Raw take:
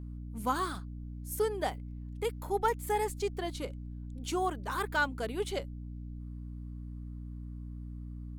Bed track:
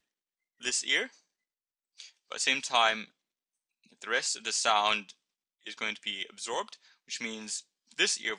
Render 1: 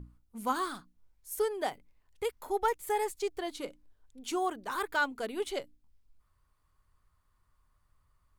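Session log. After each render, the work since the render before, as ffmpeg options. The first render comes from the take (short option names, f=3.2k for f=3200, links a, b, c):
-af "bandreject=f=60:t=h:w=6,bandreject=f=120:t=h:w=6,bandreject=f=180:t=h:w=6,bandreject=f=240:t=h:w=6,bandreject=f=300:t=h:w=6"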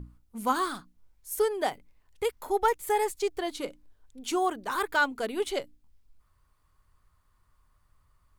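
-af "volume=4.5dB"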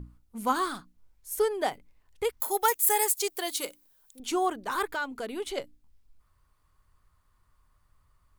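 -filter_complex "[0:a]asettb=1/sr,asplit=3[a][b][c];[a]atrim=end=2.404[d];[b]atrim=start=2.4:end=4.2,asetpts=PTS-STARTPTS,afade=t=in:d=0.004:c=qsin,afade=t=out:st=1.796:d=0.004:c=qsin,aemphasis=mode=production:type=riaa[e];[c]atrim=start=4.196[f];[d][e]acrossfade=d=0.004:c1=hsin:c2=qsin[g];[g][f]acrossfade=d=0.004:c1=qsin:c2=hsin,asettb=1/sr,asplit=3[h][i][j];[h]atrim=end=4.904[k];[i]atrim=start=4.9:end=5.58,asetpts=PTS-STARTPTS,afade=t=in:d=0.004:c=qsin,afade=t=out:st=0.676:d=0.004:c=qsin,acompressor=threshold=-33dB:ratio=2:attack=3.2:release=140:knee=1:detection=peak[l];[j]atrim=start=5.576[m];[k][l]acrossfade=d=0.004:c1=hsin:c2=qsin[n];[n][m]acrossfade=d=0.004:c1=qsin:c2=hsin"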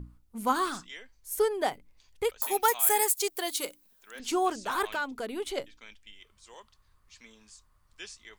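-filter_complex "[1:a]volume=-17dB[a];[0:a][a]amix=inputs=2:normalize=0"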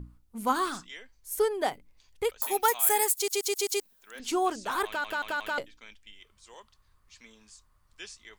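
-filter_complex "[0:a]asplit=10[a][b][c][d][e][f][g][h][i][j];[a]atrim=end=3.282[k];[b]atrim=start=3.148:end=3.282[l];[c]atrim=start=3.148:end=3.282[m];[d]atrim=start=3.148:end=3.282[n];[e]atrim=start=3.148:end=3.282[o];[f]atrim=start=3.798:end=5.042[p];[g]atrim=start=4.858:end=5.042[q];[h]atrim=start=4.858:end=5.042[r];[i]atrim=start=4.858:end=5.042[s];[j]atrim=start=5.578[t];[k][l]acrossfade=d=0.004:c1=hsin:c2=hsin[u];[u][m]acrossfade=d=0.004:c1=hsin:c2=hsin[v];[v][n]acrossfade=d=0.004:c1=hsin:c2=hsin[w];[w][o]acrossfade=d=0.004:c1=hsin:c2=hsin[x];[x][p]acrossfade=d=0.004:c1=hsin:c2=hsin[y];[y][q]acrossfade=d=0.004:c1=hsin:c2=hsin[z];[z][r]acrossfade=d=0.004:c1=hsin:c2=hsin[aa];[aa][s]acrossfade=d=0.004:c1=hsin:c2=hsin[ab];[ab][t]acrossfade=d=0.004:c1=hsin:c2=hsin"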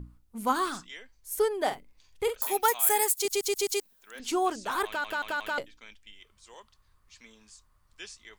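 -filter_complex "[0:a]asettb=1/sr,asplit=3[a][b][c];[a]atrim=end=1.624[d];[b]atrim=start=1.62:end=2.52,asetpts=PTS-STARTPTS,afade=t=in:d=0.004:c=qsin,afade=t=out:st=0.896:d=0.004:c=qsin,asplit=2[e][f];[f]adelay=46,volume=-8dB[g];[e][g]amix=inputs=2:normalize=0,atrim=end_sample=39690[h];[c]atrim=start=2.516[i];[d][h]acrossfade=d=0.004:c1=hsin:c2=qsin[j];[j][i]acrossfade=d=0.004:c1=qsin:c2=hsin,asettb=1/sr,asplit=3[k][l][m];[k]atrim=end=3.254[n];[l]atrim=start=3.25:end=3.73,asetpts=PTS-STARTPTS,afade=t=in:d=0.004:c=qsin,afade=t=out:st=0.476:d=0.004:c=qsin,bass=f=250:g=11,treble=f=4k:g=-1[o];[m]atrim=start=3.726[p];[n][o]acrossfade=d=0.004:c1=hsin:c2=qsin[q];[q][p]acrossfade=d=0.004:c1=qsin:c2=hsin"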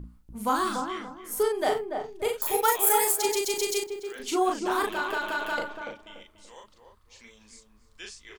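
-filter_complex "[0:a]asplit=2[a][b];[b]adelay=38,volume=-3dB[c];[a][c]amix=inputs=2:normalize=0,asplit=2[d][e];[e]adelay=289,lowpass=f=920:p=1,volume=-4dB,asplit=2[f][g];[g]adelay=289,lowpass=f=920:p=1,volume=0.34,asplit=2[h][i];[i]adelay=289,lowpass=f=920:p=1,volume=0.34,asplit=2[j][k];[k]adelay=289,lowpass=f=920:p=1,volume=0.34[l];[f][h][j][l]amix=inputs=4:normalize=0[m];[d][m]amix=inputs=2:normalize=0"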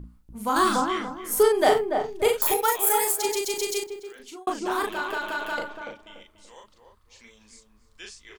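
-filter_complex "[0:a]asettb=1/sr,asplit=3[a][b][c];[a]atrim=end=0.564[d];[b]atrim=start=0.56:end=2.54,asetpts=PTS-STARTPTS,afade=t=in:d=0.004:c=qsin,afade=t=out:st=1.976:d=0.004:c=qsin,acontrast=76[e];[c]atrim=start=2.536[f];[d][e]acrossfade=d=0.004:c1=hsin:c2=qsin[g];[g][f]acrossfade=d=0.004:c1=qsin:c2=hsin,asplit=2[h][i];[h]atrim=end=4.47,asetpts=PTS-STARTPTS,afade=t=out:st=3.86:d=0.61[j];[i]atrim=start=4.47,asetpts=PTS-STARTPTS,afade=t=in:d=0.004:c=hsin[k];[j][k]concat=n=2:v=0:a=1"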